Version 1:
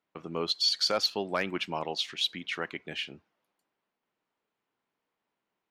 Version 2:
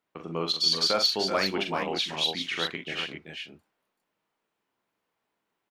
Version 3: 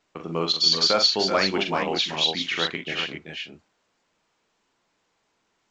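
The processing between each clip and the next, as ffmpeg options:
-af "aecho=1:1:42|67|382|407:0.501|0.126|0.376|0.473,volume=1.19"
-af "volume=1.68" -ar 16000 -c:a pcm_alaw

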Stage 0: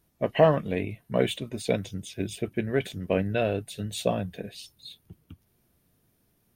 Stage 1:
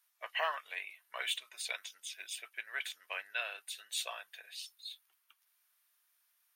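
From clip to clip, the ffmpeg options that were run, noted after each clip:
-af "highpass=f=1100:w=0.5412,highpass=f=1100:w=1.3066,volume=0.841"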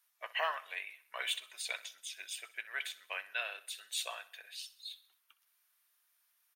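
-af "aecho=1:1:63|126|189|252:0.133|0.0653|0.032|0.0157"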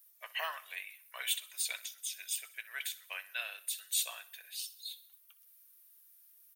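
-af "aemphasis=mode=production:type=riaa,volume=0.562"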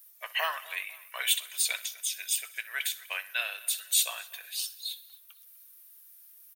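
-filter_complex "[0:a]asplit=2[s0][s1];[s1]adelay=249,lowpass=f=3700:p=1,volume=0.1,asplit=2[s2][s3];[s3]adelay=249,lowpass=f=3700:p=1,volume=0.43,asplit=2[s4][s5];[s5]adelay=249,lowpass=f=3700:p=1,volume=0.43[s6];[s0][s2][s4][s6]amix=inputs=4:normalize=0,volume=2.37"

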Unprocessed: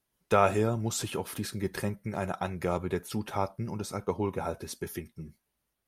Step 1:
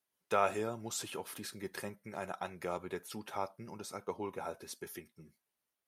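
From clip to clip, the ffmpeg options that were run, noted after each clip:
-af "highpass=f=430:p=1,volume=0.531"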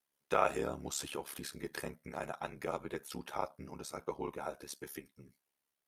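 -af "aeval=exprs='val(0)*sin(2*PI*35*n/s)':c=same,volume=1.41"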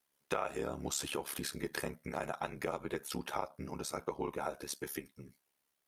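-af "acompressor=threshold=0.0141:ratio=6,volume=1.78"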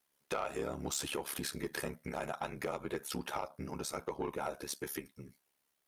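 -af "asoftclip=type=tanh:threshold=0.0398,volume=1.19"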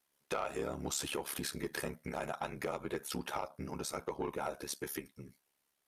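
-af "aresample=32000,aresample=44100"

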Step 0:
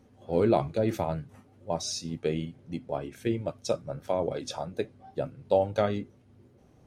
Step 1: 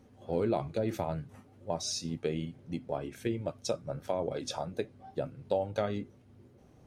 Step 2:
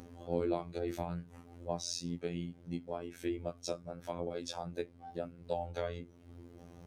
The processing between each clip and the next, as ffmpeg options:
-af "acompressor=threshold=0.0282:ratio=2"
-af "afftfilt=real='hypot(re,im)*cos(PI*b)':imag='0':win_size=2048:overlap=0.75,acompressor=mode=upward:threshold=0.0112:ratio=2.5,volume=0.891"

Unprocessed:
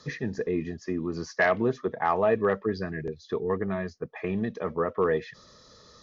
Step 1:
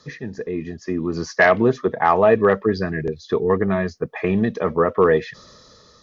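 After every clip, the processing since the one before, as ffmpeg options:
-af "dynaudnorm=f=250:g=7:m=3.16"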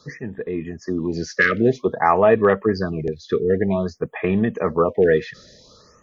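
-af "afftfilt=real='re*(1-between(b*sr/1024,820*pow(5700/820,0.5+0.5*sin(2*PI*0.52*pts/sr))/1.41,820*pow(5700/820,0.5+0.5*sin(2*PI*0.52*pts/sr))*1.41))':imag='im*(1-between(b*sr/1024,820*pow(5700/820,0.5+0.5*sin(2*PI*0.52*pts/sr))/1.41,820*pow(5700/820,0.5+0.5*sin(2*PI*0.52*pts/sr))*1.41))':win_size=1024:overlap=0.75"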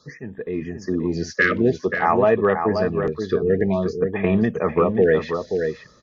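-filter_complex "[0:a]dynaudnorm=f=320:g=3:m=1.78,asplit=2[s0][s1];[s1]adelay=530.6,volume=0.501,highshelf=f=4000:g=-11.9[s2];[s0][s2]amix=inputs=2:normalize=0,volume=0.631"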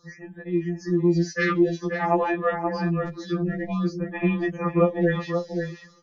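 -af "afftfilt=real='re*2.83*eq(mod(b,8),0)':imag='im*2.83*eq(mod(b,8),0)':win_size=2048:overlap=0.75"

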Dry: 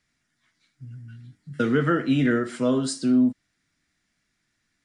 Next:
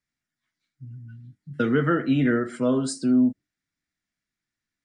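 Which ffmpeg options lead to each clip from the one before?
-af "afftdn=nr=13:nf=-46,adynamicequalizer=threshold=0.00355:dfrequency=3600:dqfactor=1.2:tfrequency=3600:tqfactor=1.2:attack=5:release=100:ratio=0.375:range=2.5:mode=cutabove:tftype=bell"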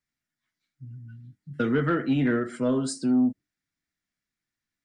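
-af "asoftclip=type=tanh:threshold=0.251,volume=0.841"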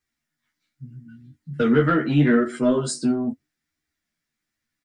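-filter_complex "[0:a]flanger=delay=2.5:depth=7.5:regen=-35:speed=0.78:shape=sinusoidal,asplit=2[s0][s1];[s1]adelay=13,volume=0.708[s2];[s0][s2]amix=inputs=2:normalize=0,volume=2.37"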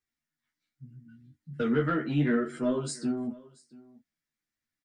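-af "aecho=1:1:681:0.075,volume=0.376"

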